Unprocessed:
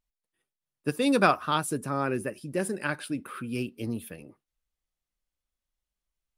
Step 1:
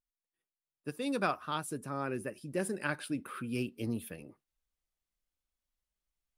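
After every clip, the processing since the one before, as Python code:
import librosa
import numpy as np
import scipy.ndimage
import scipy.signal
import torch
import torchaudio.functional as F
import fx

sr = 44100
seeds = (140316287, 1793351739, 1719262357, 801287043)

y = fx.rider(x, sr, range_db=10, speed_s=2.0)
y = y * librosa.db_to_amplitude(-7.5)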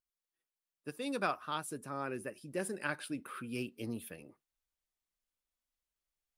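y = fx.low_shelf(x, sr, hz=260.0, db=-6.0)
y = y * librosa.db_to_amplitude(-1.5)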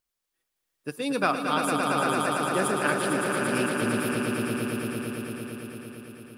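y = fx.echo_swell(x, sr, ms=113, loudest=5, wet_db=-6)
y = y * librosa.db_to_amplitude(9.0)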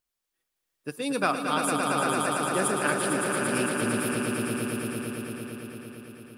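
y = fx.dynamic_eq(x, sr, hz=8900.0, q=1.4, threshold_db=-50.0, ratio=4.0, max_db=6)
y = y * librosa.db_to_amplitude(-1.0)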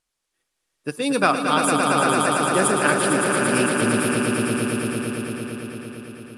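y = scipy.signal.sosfilt(scipy.signal.butter(4, 11000.0, 'lowpass', fs=sr, output='sos'), x)
y = y * librosa.db_to_amplitude(7.0)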